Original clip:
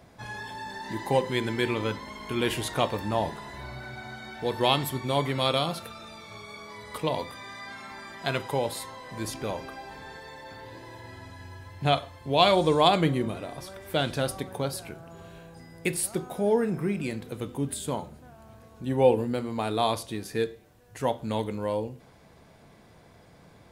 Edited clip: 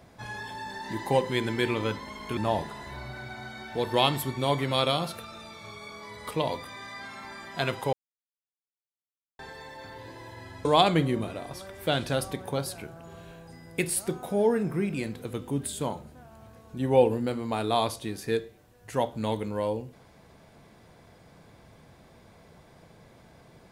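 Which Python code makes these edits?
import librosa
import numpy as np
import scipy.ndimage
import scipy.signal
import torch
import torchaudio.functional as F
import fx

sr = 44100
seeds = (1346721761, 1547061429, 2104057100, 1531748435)

y = fx.edit(x, sr, fx.cut(start_s=2.37, length_s=0.67),
    fx.silence(start_s=8.6, length_s=1.46),
    fx.cut(start_s=11.32, length_s=1.4), tone=tone)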